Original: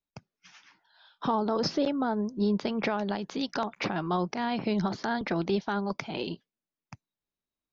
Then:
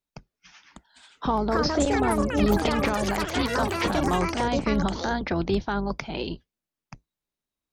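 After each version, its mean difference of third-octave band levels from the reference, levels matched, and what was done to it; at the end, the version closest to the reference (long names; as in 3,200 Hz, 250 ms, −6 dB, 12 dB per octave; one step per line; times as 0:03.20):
7.5 dB: sub-octave generator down 2 octaves, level −5 dB
pitch vibrato 3.4 Hz 12 cents
delay with pitch and tempo change per echo 646 ms, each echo +6 semitones, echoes 3
level +2.5 dB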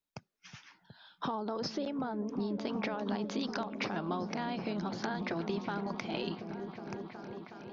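4.5 dB: low-shelf EQ 150 Hz −5 dB
downward compressor, threshold −34 dBFS, peak gain reduction 10.5 dB
on a send: echo whose low-pass opens from repeat to repeat 367 ms, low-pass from 200 Hz, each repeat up 1 octave, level −3 dB
on the sum: level +1 dB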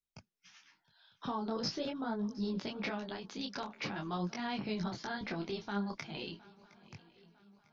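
3.5 dB: parametric band 570 Hz −7.5 dB 2.9 octaves
feedback echo with a long and a short gap by turns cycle 951 ms, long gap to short 3 to 1, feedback 42%, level −22 dB
micro pitch shift up and down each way 15 cents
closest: third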